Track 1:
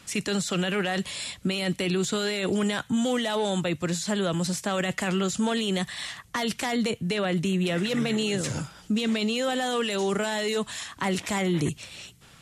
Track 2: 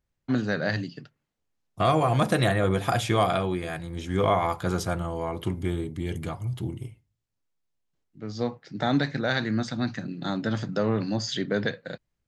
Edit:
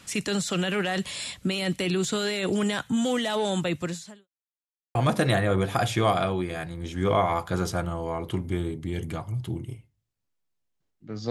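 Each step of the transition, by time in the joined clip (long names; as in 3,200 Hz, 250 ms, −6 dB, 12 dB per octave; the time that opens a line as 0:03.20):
track 1
0:03.80–0:04.28: fade out quadratic
0:04.28–0:04.95: silence
0:04.95: continue with track 2 from 0:02.08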